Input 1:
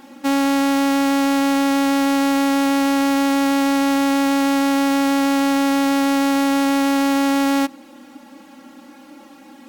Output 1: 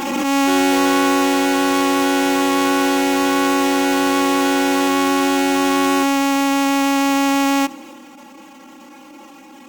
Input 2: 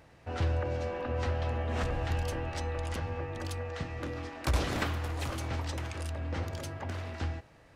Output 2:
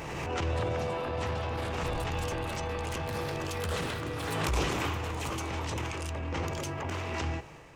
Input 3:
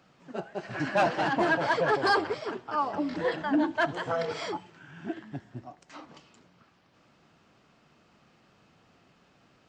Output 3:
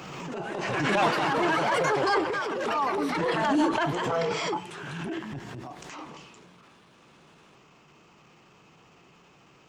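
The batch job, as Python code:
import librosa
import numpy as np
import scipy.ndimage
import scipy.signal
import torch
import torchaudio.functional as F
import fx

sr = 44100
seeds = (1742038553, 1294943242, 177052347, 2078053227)

y = fx.ripple_eq(x, sr, per_octave=0.73, db=6)
y = fx.echo_pitch(y, sr, ms=291, semitones=5, count=2, db_per_echo=-6.0)
y = fx.rider(y, sr, range_db=4, speed_s=2.0)
y = fx.low_shelf(y, sr, hz=130.0, db=-4.5)
y = fx.transient(y, sr, attack_db=-12, sustain_db=4)
y = fx.pre_swell(y, sr, db_per_s=24.0)
y = y * 10.0 ** (2.0 / 20.0)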